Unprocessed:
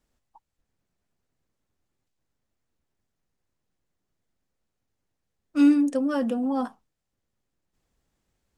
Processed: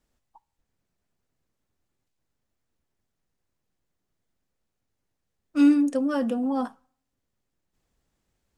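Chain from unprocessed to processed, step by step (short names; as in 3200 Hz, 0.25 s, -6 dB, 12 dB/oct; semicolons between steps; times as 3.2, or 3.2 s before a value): on a send: HPF 770 Hz 12 dB/oct + reverb RT60 0.60 s, pre-delay 3 ms, DRR 21.5 dB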